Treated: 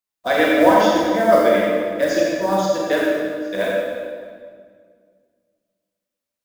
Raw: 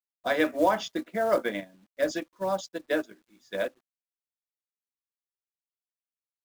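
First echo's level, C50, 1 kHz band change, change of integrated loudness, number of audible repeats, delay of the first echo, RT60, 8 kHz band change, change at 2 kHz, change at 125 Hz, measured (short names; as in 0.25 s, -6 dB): none, -2.5 dB, +11.5 dB, +11.5 dB, none, none, 1.9 s, +10.5 dB, +11.0 dB, +13.5 dB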